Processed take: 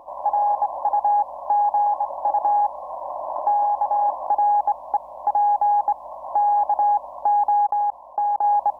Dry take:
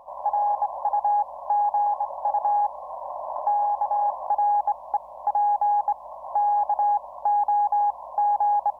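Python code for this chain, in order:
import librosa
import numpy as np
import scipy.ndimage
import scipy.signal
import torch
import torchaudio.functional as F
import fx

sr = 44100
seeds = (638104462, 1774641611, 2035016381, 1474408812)

y = fx.peak_eq(x, sr, hz=320.0, db=11.5, octaves=0.61)
y = fx.level_steps(y, sr, step_db=23, at=(7.66, 8.44))
y = F.gain(torch.from_numpy(y), 2.5).numpy()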